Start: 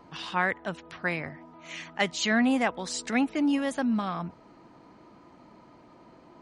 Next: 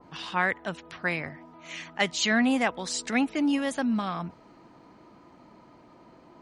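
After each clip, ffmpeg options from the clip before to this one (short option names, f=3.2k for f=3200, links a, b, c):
-af "adynamicequalizer=threshold=0.0158:dfrequency=1800:dqfactor=0.7:tfrequency=1800:tqfactor=0.7:attack=5:release=100:ratio=0.375:range=1.5:mode=boostabove:tftype=highshelf"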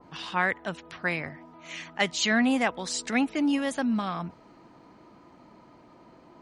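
-af anull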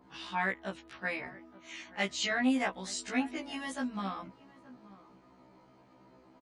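-filter_complex "[0:a]asplit=2[a][b];[b]adelay=874.6,volume=-19dB,highshelf=f=4k:g=-19.7[c];[a][c]amix=inputs=2:normalize=0,afftfilt=real='re*1.73*eq(mod(b,3),0)':imag='im*1.73*eq(mod(b,3),0)':win_size=2048:overlap=0.75,volume=-4dB"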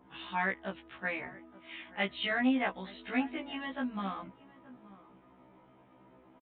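-af "aresample=8000,aresample=44100"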